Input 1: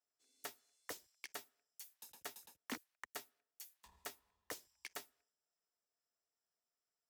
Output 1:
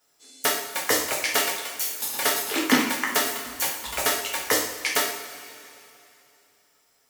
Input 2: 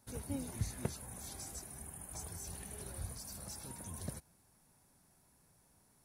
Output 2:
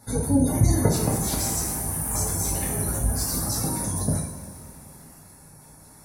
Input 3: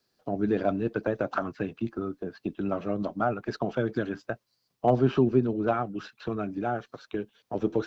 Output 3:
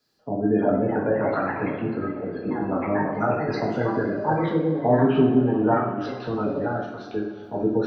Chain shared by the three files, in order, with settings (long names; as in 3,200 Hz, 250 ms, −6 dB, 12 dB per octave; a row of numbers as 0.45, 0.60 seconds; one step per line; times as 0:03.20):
delay with pitch and tempo change per echo 400 ms, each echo +4 semitones, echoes 2, each echo −6 dB
gate on every frequency bin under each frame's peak −25 dB strong
coupled-rooms reverb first 0.54 s, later 2.9 s, from −15 dB, DRR −4 dB
loudness normalisation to −24 LKFS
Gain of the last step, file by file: +21.5, +14.0, −1.0 decibels